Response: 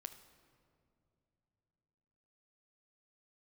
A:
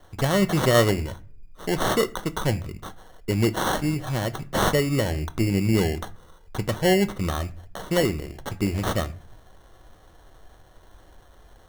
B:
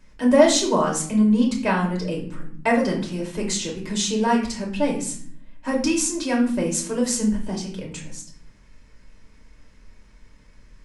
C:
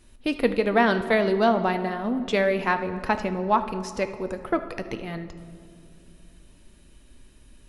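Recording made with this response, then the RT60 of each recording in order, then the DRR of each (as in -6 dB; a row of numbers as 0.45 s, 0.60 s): C; 0.40 s, 0.60 s, no single decay rate; 11.0 dB, -1.5 dB, 8.0 dB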